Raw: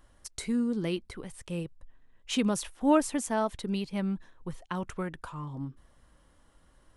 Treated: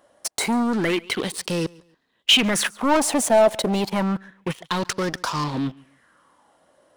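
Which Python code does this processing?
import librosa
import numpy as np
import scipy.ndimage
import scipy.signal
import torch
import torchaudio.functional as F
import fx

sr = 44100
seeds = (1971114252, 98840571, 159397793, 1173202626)

p1 = scipy.signal.sosfilt(scipy.signal.butter(2, 210.0, 'highpass', fs=sr, output='sos'), x)
p2 = fx.leveller(p1, sr, passes=3)
p3 = fx.over_compress(p2, sr, threshold_db=-29.0, ratio=-1.0)
p4 = p2 + F.gain(torch.from_numpy(p3), -1.0).numpy()
p5 = 10.0 ** (-18.5 / 20.0) * np.tanh(p4 / 10.0 ** (-18.5 / 20.0))
p6 = p5 + fx.echo_feedback(p5, sr, ms=141, feedback_pct=27, wet_db=-24, dry=0)
y = fx.bell_lfo(p6, sr, hz=0.29, low_hz=590.0, high_hz=5300.0, db=13)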